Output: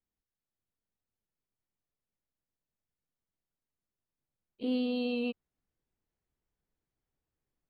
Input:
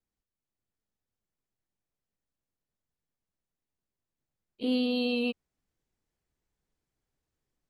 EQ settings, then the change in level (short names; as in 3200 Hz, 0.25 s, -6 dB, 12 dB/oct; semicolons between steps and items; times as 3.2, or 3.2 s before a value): high shelf 4000 Hz -11 dB; -3.0 dB